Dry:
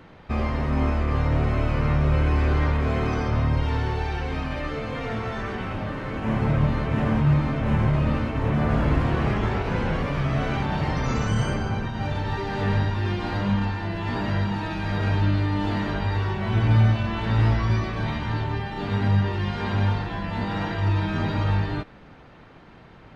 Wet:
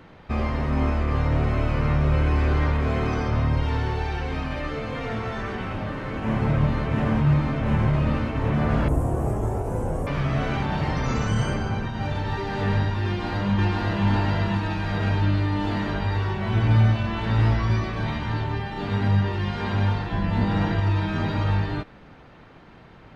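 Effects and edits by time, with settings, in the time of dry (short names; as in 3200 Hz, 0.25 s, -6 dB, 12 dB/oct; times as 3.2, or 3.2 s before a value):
8.88–10.07 EQ curve 120 Hz 0 dB, 190 Hz -7 dB, 290 Hz -1 dB, 710 Hz +1 dB, 2000 Hz -18 dB, 4200 Hz -21 dB, 8400 Hz +14 dB
13.06–14.05 echo throw 0.52 s, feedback 40%, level -0.5 dB
20.12–20.8 low shelf 340 Hz +7.5 dB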